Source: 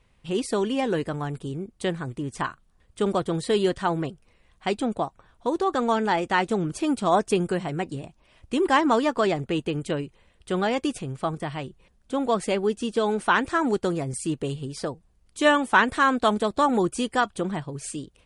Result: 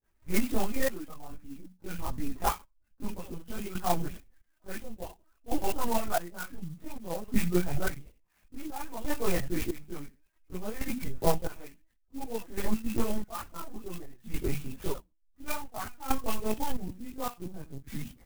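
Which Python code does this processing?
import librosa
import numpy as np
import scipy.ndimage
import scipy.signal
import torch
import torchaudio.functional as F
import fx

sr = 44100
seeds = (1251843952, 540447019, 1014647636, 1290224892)

y = fx.spec_delay(x, sr, highs='late', ms=123)
y = fx.echo_feedback(y, sr, ms=70, feedback_pct=19, wet_db=-9.0)
y = fx.granulator(y, sr, seeds[0], grain_ms=100.0, per_s=20.0, spray_ms=18.0, spread_st=0)
y = fx.dereverb_blind(y, sr, rt60_s=0.61)
y = fx.high_shelf(y, sr, hz=2300.0, db=6.0)
y = fx.hum_notches(y, sr, base_hz=60, count=6)
y = fx.formant_shift(y, sr, semitones=-4)
y = fx.lpc_vocoder(y, sr, seeds[1], excitation='pitch_kept', order=10)
y = fx.rider(y, sr, range_db=4, speed_s=0.5)
y = fx.chorus_voices(y, sr, voices=6, hz=1.2, base_ms=20, depth_ms=3.1, mix_pct=65)
y = fx.step_gate(y, sr, bpm=68, pattern='.xxx....', floor_db=-12.0, edge_ms=4.5)
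y = fx.clock_jitter(y, sr, seeds[2], jitter_ms=0.069)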